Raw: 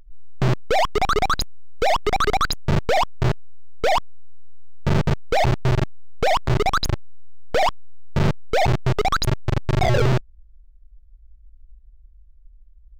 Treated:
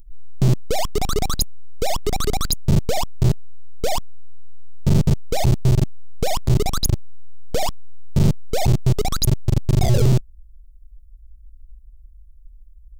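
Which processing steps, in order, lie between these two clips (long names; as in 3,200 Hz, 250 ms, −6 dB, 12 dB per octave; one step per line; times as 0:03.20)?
drawn EQ curve 210 Hz 0 dB, 1,600 Hz −17 dB, 10,000 Hz +8 dB
level +4 dB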